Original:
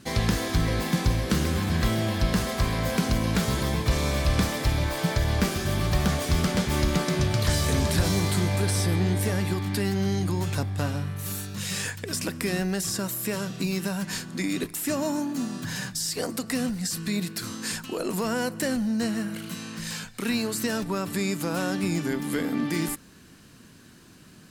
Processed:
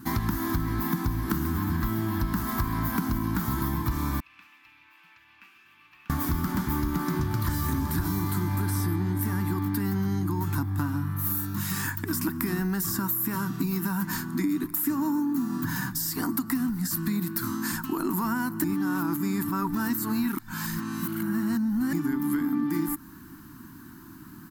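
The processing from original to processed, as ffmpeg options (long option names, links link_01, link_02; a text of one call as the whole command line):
ffmpeg -i in.wav -filter_complex "[0:a]asettb=1/sr,asplit=3[link_01][link_02][link_03];[link_01]atrim=end=4.204[link_04];[link_02]atrim=start=4.2:end=6.1,asetpts=PTS-STARTPTS,afade=type=in:duration=0.004:curve=qsin,afade=type=out:start_time=1.896:duration=0.004:curve=qsin,bandpass=frequency=2600:width_type=q:width=19[link_05];[link_03]atrim=start=6.096[link_06];[link_04][link_05]acrossfade=duration=0.004:curve1=hsin:curve2=qsin[link_07];[link_07][link_06]acrossfade=duration=0.004:curve1=qsin:curve2=hsin,asplit=3[link_08][link_09][link_10];[link_08]atrim=end=18.642[link_11];[link_09]atrim=start=18.638:end=21.932,asetpts=PTS-STARTPTS,areverse[link_12];[link_10]atrim=start=21.928[link_13];[link_11][link_12]acrossfade=duration=0.004:curve1=hsin:curve2=hsin[link_14];[link_14][link_13]acrossfade=duration=0.004:curve1=hsin:curve2=hsin,firequalizer=gain_entry='entry(200,0);entry(310,8);entry(490,-25);entry(910,5);entry(1400,2);entry(2500,-12);entry(5000,-9);entry(9200,-6);entry(14000,12)':delay=0.05:min_phase=1,acompressor=threshold=-28dB:ratio=6,volume=4dB" out.wav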